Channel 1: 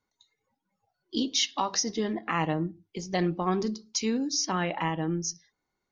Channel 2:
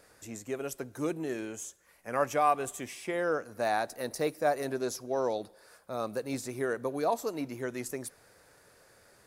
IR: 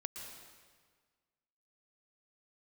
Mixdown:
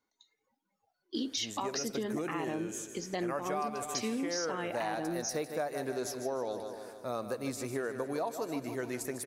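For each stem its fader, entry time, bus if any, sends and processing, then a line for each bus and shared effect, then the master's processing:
−1.5 dB, 0.00 s, no send, no echo send, low shelf with overshoot 190 Hz −7.5 dB, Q 1.5; brickwall limiter −19.5 dBFS, peak gain reduction 6 dB
+0.5 dB, 1.15 s, no send, echo send −11 dB, no processing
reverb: not used
echo: repeating echo 152 ms, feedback 58%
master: downward compressor 6 to 1, threshold −31 dBFS, peak gain reduction 11.5 dB

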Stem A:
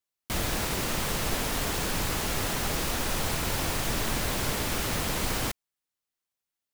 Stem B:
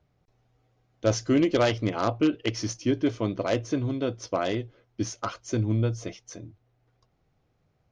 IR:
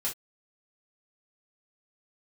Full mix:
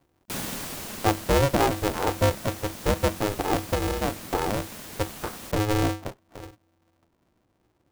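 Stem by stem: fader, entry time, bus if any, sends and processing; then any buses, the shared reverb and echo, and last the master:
−1.5 dB, 0.00 s, no send, automatic ducking −12 dB, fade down 1.35 s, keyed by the second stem
+1.0 dB, 0.00 s, no send, low-pass filter 1,000 Hz 24 dB per octave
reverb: not used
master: high-shelf EQ 5,600 Hz +6.5 dB; ring modulator with a square carrier 210 Hz

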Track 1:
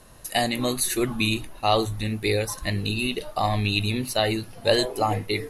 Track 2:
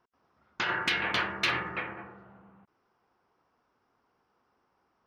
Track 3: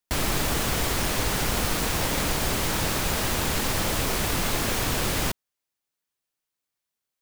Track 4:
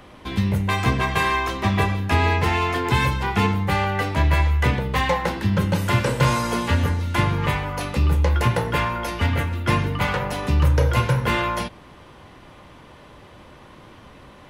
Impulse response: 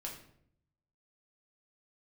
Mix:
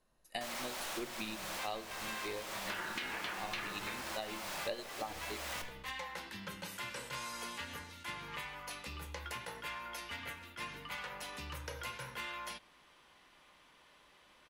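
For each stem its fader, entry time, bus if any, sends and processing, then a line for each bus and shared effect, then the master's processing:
−0.5 dB, 0.00 s, send −8 dB, high-shelf EQ 10,000 Hz −11 dB; expander for the loud parts 2.5 to 1, over −33 dBFS
+0.5 dB, 2.10 s, no send, no processing
−1.5 dB, 0.30 s, send −9.5 dB, Butterworth high-pass 520 Hz 96 dB per octave; comparator with hysteresis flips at −32.5 dBFS; pitch vibrato 2.8 Hz 13 cents; automatic ducking −12 dB, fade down 1.15 s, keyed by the first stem
−17.5 dB, 0.90 s, no send, tilt shelving filter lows −8 dB; level that may rise only so fast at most 210 dB per second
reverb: on, RT60 0.65 s, pre-delay 5 ms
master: parametric band 100 Hz −13 dB 0.65 octaves; downward compressor 5 to 1, threshold −39 dBFS, peak gain reduction 20.5 dB

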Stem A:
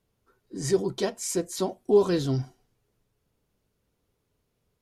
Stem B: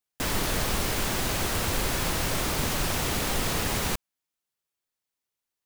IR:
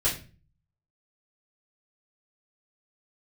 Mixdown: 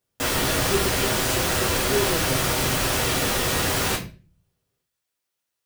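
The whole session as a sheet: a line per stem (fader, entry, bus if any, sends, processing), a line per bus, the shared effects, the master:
−7.5 dB, 0.00 s, send −9.5 dB, no processing
−2.0 dB, 0.00 s, send −3.5 dB, no processing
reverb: on, RT60 0.35 s, pre-delay 3 ms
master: high-pass filter 220 Hz 6 dB per octave

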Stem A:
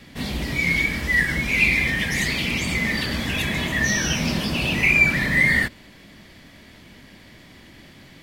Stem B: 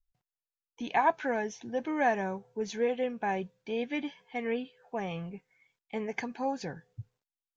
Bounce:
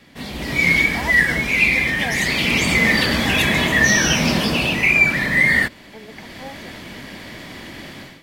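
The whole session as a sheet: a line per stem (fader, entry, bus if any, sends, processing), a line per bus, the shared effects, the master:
−4.0 dB, 0.00 s, no send, low-shelf EQ 120 Hz −6 dB; automatic gain control gain up to 15 dB
−7.5 dB, 0.00 s, no send, no processing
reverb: not used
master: parametric band 770 Hz +3 dB 2.7 octaves

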